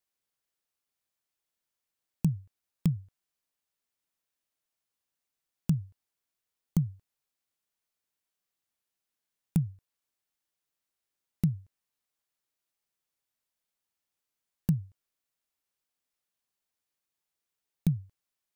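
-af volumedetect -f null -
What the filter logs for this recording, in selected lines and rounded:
mean_volume: -38.4 dB
max_volume: -13.8 dB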